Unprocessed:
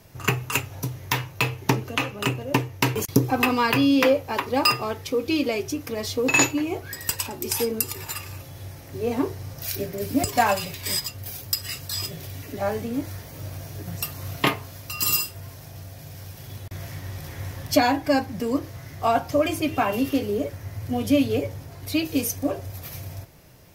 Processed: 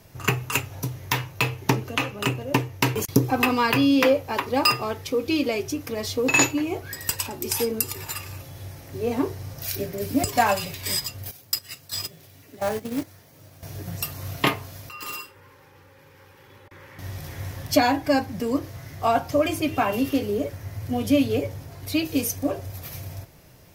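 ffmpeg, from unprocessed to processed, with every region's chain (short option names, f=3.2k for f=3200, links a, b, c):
-filter_complex "[0:a]asettb=1/sr,asplit=3[a][b][c];[a]atrim=end=11.314[d];[b]atrim=start=11.31:end=13.63,asetpts=PTS-STARTPTS,afade=t=in:d=0.004:c=qsin,afade=t=out:st=2.316:d=0.004:c=qsin,highpass=120,agate=range=-11dB:threshold=-31dB:ratio=16:release=100:detection=peak,acrusher=bits=3:mode=log:mix=0:aa=0.000001[e];[c]atrim=start=13.626[f];[d][e]acrossfade=d=0.004:c1=hsin:c2=qsin[g];[g][f]acrossfade=d=0.004:c1=qsin:c2=hsin,asettb=1/sr,asplit=3[h][i][j];[h]atrim=end=14.894[k];[i]atrim=start=14.89:end=16.99,asetpts=PTS-STARTPTS,afade=t=in:d=0.004:c=qsin,afade=t=out:st=2.096:d=0.004:c=qsin,asuperstop=centerf=680:order=20:qfactor=3.8,acrossover=split=330 2600:gain=0.141 1 0.141[l][m][n];[l][m][n]amix=inputs=3:normalize=0,aeval=exprs='(mod(16.8*val(0)+1,2)-1)/16.8':c=same[o];[j]atrim=start=16.986[p];[k][o]acrossfade=d=0.004:c1=hsin:c2=qsin[q];[q][p]acrossfade=d=0.004:c1=qsin:c2=hsin"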